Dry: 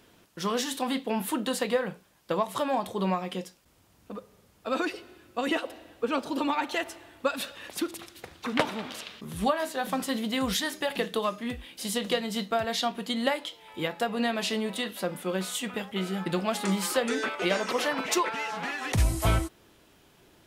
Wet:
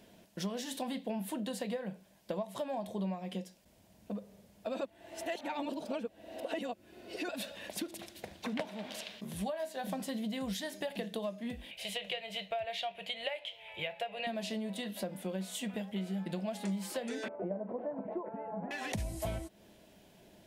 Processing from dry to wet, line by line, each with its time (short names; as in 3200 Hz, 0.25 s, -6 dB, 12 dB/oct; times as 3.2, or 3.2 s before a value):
4.81–7.29 reverse
8.67–9.84 low shelf 400 Hz -6 dB
11.71–14.27 EQ curve 110 Hz 0 dB, 160 Hz -7 dB, 240 Hz -28 dB, 390 Hz -8 dB, 650 Hz +1 dB, 1000 Hz -4 dB, 1700 Hz 0 dB, 2500 Hz +11 dB, 5100 Hz -9 dB
17.28–18.71 Bessel low-pass 690 Hz, order 4
whole clip: thirty-one-band EQ 200 Hz +11 dB, 630 Hz +10 dB, 1250 Hz -11 dB; compressor 4:1, threshold -33 dBFS; gain -3 dB